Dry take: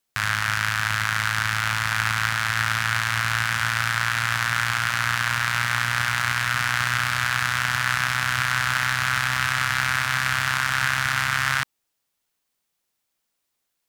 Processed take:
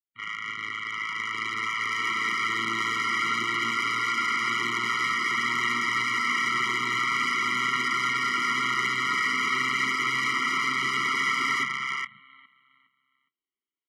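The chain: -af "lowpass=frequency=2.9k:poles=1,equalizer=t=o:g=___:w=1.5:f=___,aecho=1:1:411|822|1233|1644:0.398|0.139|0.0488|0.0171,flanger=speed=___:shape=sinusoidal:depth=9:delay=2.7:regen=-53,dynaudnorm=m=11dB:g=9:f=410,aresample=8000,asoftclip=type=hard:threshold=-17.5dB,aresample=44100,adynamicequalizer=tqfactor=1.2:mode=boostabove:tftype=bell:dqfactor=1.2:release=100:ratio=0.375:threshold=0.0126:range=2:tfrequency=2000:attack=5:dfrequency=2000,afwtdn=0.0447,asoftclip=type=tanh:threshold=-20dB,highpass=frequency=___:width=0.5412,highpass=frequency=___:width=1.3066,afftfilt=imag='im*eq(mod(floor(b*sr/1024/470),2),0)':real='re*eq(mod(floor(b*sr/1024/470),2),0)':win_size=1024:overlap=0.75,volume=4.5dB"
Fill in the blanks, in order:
-10, 870, 0.49, 240, 240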